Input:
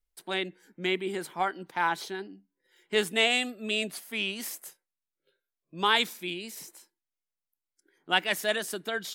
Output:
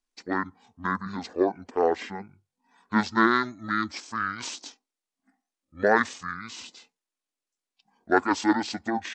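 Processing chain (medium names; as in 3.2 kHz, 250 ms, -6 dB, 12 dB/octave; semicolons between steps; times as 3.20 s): pitch shift -12 st; resonant low shelf 200 Hz -8.5 dB, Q 3; trim +3 dB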